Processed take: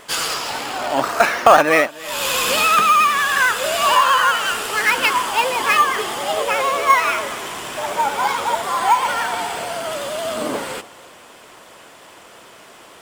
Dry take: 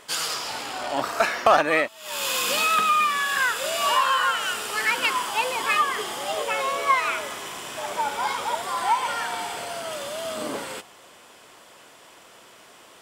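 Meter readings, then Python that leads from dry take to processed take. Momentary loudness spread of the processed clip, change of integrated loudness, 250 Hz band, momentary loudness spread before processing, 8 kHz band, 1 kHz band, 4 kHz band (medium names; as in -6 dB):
12 LU, +6.5 dB, +7.0 dB, 12 LU, +5.0 dB, +7.0 dB, +5.0 dB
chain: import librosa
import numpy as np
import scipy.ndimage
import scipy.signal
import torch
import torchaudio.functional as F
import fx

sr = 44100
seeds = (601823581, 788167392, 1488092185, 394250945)

p1 = fx.vibrato(x, sr, rate_hz=11.0, depth_cents=55.0)
p2 = fx.sample_hold(p1, sr, seeds[0], rate_hz=7700.0, jitter_pct=0)
p3 = p1 + (p2 * 10.0 ** (-9.0 / 20.0))
p4 = p3 + 10.0 ** (-21.5 / 20.0) * np.pad(p3, (int(286 * sr / 1000.0), 0))[:len(p3)]
y = p4 * 10.0 ** (4.5 / 20.0)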